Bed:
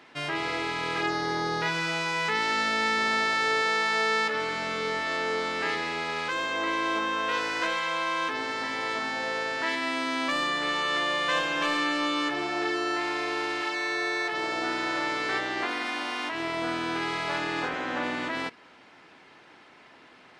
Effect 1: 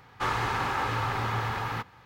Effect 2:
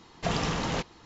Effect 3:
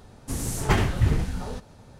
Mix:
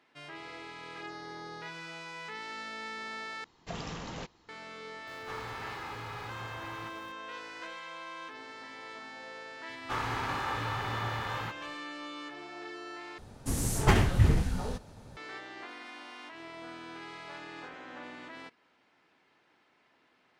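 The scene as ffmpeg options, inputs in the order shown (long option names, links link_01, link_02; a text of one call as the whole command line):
ffmpeg -i bed.wav -i cue0.wav -i cue1.wav -i cue2.wav -filter_complex "[1:a]asplit=2[link_01][link_02];[0:a]volume=-15dB[link_03];[link_01]aeval=exprs='val(0)+0.5*0.0133*sgn(val(0))':channel_layout=same[link_04];[link_03]asplit=3[link_05][link_06][link_07];[link_05]atrim=end=3.444[link_08];[2:a]atrim=end=1.05,asetpts=PTS-STARTPTS,volume=-11dB[link_09];[link_06]atrim=start=4.486:end=13.184[link_10];[3:a]atrim=end=1.99,asetpts=PTS-STARTPTS,volume=-1.5dB[link_11];[link_07]atrim=start=15.166[link_12];[link_04]atrim=end=2.05,asetpts=PTS-STARTPTS,volume=-15dB,afade=type=in:duration=0.004:curve=hsin,afade=type=out:start_time=2.046:duration=0.004:curve=hsin,adelay=5070[link_13];[link_02]atrim=end=2.05,asetpts=PTS-STARTPTS,volume=-5.5dB,afade=type=in:duration=0.004:curve=hsin,afade=type=out:start_time=2.046:duration=0.004:curve=hsin,adelay=9690[link_14];[link_08][link_09]acrossfade=duration=0.004:curve1=hsin:curve2=hsin[link_15];[link_15][link_10]acrossfade=duration=0.004:curve1=hsin:curve2=hsin[link_16];[link_16][link_11]acrossfade=duration=0.004:curve1=hsin:curve2=hsin[link_17];[link_17][link_12]acrossfade=duration=0.004:curve1=hsin:curve2=hsin[link_18];[link_18][link_13][link_14]amix=inputs=3:normalize=0" out.wav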